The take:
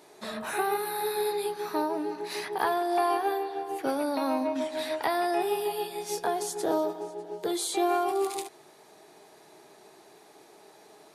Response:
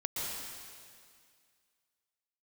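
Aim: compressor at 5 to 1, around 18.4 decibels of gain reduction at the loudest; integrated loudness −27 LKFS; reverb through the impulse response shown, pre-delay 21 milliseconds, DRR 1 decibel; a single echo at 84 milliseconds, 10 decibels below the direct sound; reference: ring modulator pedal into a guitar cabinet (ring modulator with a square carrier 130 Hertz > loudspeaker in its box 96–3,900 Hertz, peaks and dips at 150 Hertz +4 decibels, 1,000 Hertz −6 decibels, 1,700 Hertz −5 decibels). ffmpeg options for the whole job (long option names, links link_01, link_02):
-filter_complex "[0:a]acompressor=threshold=-44dB:ratio=5,aecho=1:1:84:0.316,asplit=2[link_01][link_02];[1:a]atrim=start_sample=2205,adelay=21[link_03];[link_02][link_03]afir=irnorm=-1:irlink=0,volume=-5.5dB[link_04];[link_01][link_04]amix=inputs=2:normalize=0,aeval=exprs='val(0)*sgn(sin(2*PI*130*n/s))':channel_layout=same,highpass=96,equalizer=frequency=150:width_type=q:width=4:gain=4,equalizer=frequency=1000:width_type=q:width=4:gain=-6,equalizer=frequency=1700:width_type=q:width=4:gain=-5,lowpass=frequency=3900:width=0.5412,lowpass=frequency=3900:width=1.3066,volume=18dB"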